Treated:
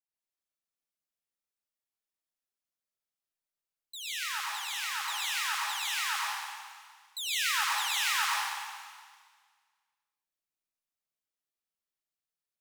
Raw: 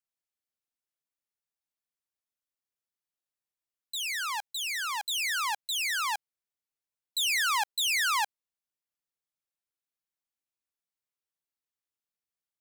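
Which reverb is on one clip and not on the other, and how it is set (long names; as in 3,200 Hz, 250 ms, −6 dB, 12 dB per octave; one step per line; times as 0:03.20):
comb and all-pass reverb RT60 1.7 s, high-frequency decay 1×, pre-delay 60 ms, DRR −6.5 dB
level −9 dB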